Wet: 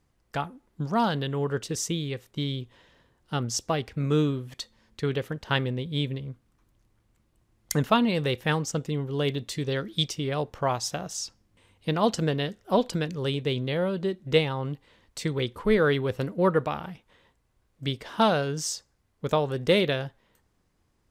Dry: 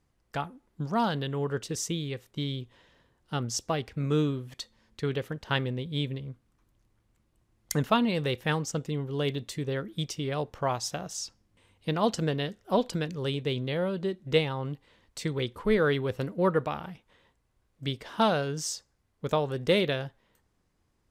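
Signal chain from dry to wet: 9.50–10.07 s: peaking EQ 4.6 kHz +5.5 dB -> +13.5 dB 1.3 oct; trim +2.5 dB

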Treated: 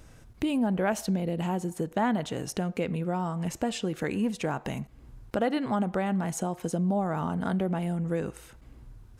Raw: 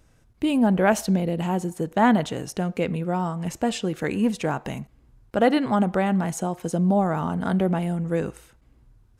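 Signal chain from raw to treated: compression 2:1, threshold -43 dBFS, peak gain reduction 16 dB; trim +7 dB

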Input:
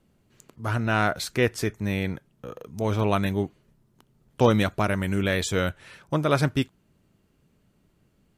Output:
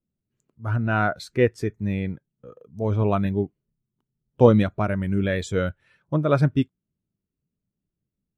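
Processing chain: spectral contrast expander 1.5:1; trim +3.5 dB

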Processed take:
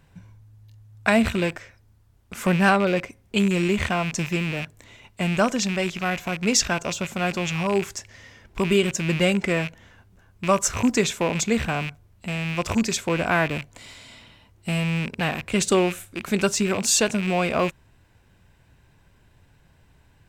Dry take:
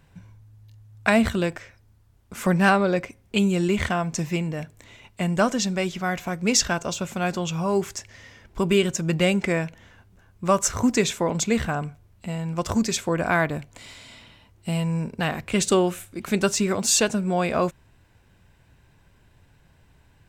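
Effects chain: rattle on loud lows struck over -35 dBFS, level -20 dBFS

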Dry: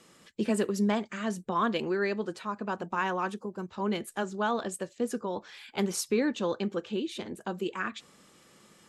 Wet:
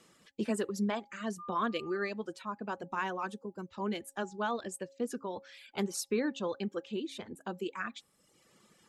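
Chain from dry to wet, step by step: 1.38–2.08 s: whistle 1.2 kHz -38 dBFS; reverb removal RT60 0.92 s; de-hum 273.2 Hz, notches 3; trim -4 dB

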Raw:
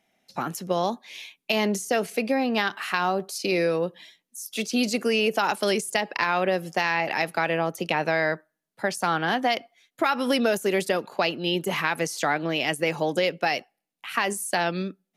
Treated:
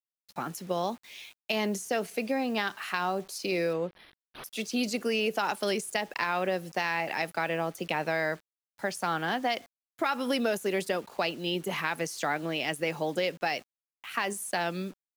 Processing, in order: bit crusher 8-bit; 3.73–4.44 s: decimation joined by straight lines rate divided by 6×; trim -5.5 dB

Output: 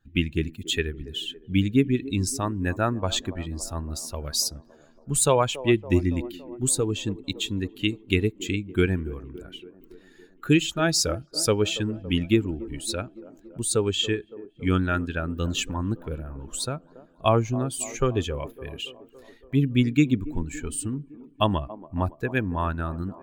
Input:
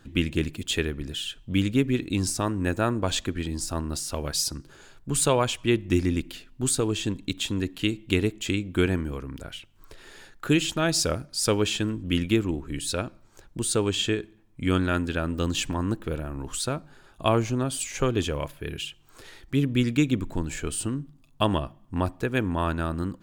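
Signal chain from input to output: expander on every frequency bin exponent 1.5; on a send: feedback echo behind a band-pass 281 ms, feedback 65%, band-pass 470 Hz, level -15 dB; on the sum: trim +4 dB

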